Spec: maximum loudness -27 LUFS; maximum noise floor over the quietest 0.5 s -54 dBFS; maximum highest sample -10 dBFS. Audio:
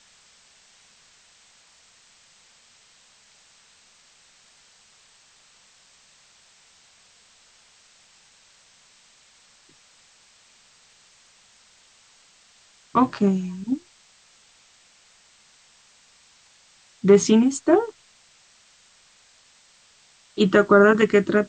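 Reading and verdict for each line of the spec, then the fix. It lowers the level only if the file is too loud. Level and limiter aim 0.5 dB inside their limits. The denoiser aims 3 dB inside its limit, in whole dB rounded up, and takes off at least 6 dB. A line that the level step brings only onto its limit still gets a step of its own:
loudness -19.5 LUFS: fail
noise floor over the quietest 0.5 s -57 dBFS: OK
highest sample -3.5 dBFS: fail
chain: gain -8 dB

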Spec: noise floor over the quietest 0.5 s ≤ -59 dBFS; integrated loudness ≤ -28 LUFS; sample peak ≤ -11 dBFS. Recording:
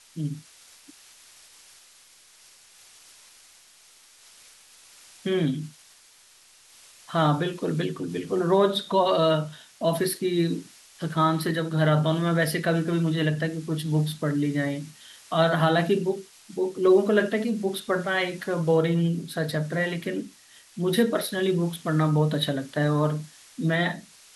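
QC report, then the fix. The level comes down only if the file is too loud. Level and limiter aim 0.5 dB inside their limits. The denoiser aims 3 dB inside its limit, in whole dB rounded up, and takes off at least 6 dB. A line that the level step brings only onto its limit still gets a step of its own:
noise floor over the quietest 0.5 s -55 dBFS: fail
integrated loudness -25.0 LUFS: fail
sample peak -8.5 dBFS: fail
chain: denoiser 6 dB, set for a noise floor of -55 dBFS; gain -3.5 dB

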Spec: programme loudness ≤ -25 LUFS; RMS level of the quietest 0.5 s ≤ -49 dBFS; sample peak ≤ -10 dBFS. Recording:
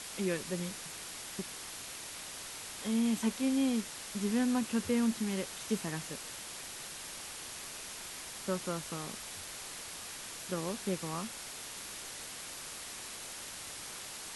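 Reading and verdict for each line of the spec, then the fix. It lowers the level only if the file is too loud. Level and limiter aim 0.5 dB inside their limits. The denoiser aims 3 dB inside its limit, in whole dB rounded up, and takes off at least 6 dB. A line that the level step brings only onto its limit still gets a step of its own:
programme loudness -37.0 LUFS: OK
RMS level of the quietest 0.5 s -45 dBFS: fail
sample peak -20.0 dBFS: OK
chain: denoiser 7 dB, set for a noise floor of -45 dBFS

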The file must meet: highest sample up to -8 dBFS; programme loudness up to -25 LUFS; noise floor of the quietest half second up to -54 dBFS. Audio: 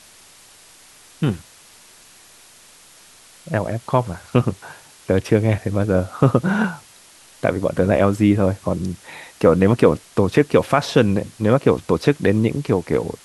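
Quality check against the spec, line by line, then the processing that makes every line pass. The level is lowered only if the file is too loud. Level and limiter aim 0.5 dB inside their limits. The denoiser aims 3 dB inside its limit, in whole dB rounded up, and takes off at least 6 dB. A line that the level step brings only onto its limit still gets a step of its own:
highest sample -1.5 dBFS: fail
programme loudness -19.0 LUFS: fail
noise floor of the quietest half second -48 dBFS: fail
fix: gain -6.5 dB; limiter -8.5 dBFS

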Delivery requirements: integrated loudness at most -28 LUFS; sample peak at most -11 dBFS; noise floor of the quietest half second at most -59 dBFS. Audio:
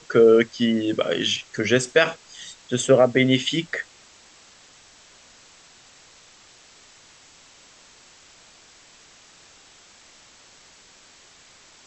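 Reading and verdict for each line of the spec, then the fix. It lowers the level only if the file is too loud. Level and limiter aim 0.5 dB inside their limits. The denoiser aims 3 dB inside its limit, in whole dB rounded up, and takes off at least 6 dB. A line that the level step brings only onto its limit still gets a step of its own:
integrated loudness -20.5 LUFS: fail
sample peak -5.5 dBFS: fail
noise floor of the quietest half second -52 dBFS: fail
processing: gain -8 dB

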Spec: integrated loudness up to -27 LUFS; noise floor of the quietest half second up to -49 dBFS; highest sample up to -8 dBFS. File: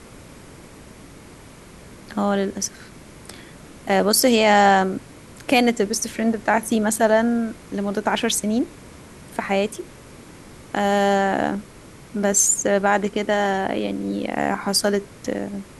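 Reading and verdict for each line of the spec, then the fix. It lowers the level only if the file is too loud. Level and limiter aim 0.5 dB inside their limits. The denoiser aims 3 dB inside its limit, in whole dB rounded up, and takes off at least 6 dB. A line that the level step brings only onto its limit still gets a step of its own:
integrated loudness -20.5 LUFS: fail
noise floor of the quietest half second -43 dBFS: fail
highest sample -4.5 dBFS: fail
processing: gain -7 dB

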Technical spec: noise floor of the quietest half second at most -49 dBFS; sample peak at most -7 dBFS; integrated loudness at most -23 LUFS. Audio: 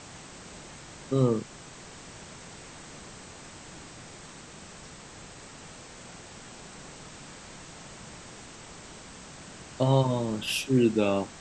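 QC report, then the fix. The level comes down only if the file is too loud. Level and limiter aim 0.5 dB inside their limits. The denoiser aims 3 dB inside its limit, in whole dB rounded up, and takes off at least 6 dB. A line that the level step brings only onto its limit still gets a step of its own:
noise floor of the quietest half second -46 dBFS: fail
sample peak -10.5 dBFS: OK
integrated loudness -26.0 LUFS: OK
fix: denoiser 6 dB, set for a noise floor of -46 dBFS

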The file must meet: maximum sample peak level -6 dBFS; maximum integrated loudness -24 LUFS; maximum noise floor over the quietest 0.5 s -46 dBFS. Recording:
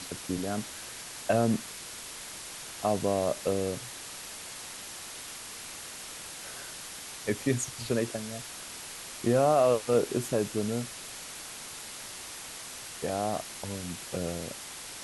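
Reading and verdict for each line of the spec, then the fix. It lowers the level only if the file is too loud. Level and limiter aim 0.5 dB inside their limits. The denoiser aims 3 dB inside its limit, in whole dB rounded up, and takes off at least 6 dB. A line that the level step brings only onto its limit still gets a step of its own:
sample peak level -13.0 dBFS: OK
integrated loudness -32.5 LUFS: OK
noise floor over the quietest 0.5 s -43 dBFS: fail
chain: denoiser 6 dB, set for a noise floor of -43 dBFS

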